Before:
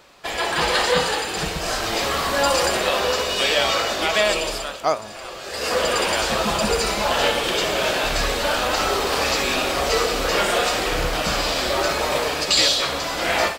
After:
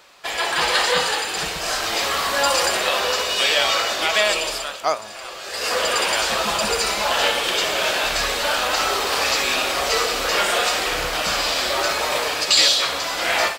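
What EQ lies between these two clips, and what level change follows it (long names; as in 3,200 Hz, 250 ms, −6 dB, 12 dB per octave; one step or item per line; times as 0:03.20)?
low-shelf EQ 460 Hz −11.5 dB
+2.5 dB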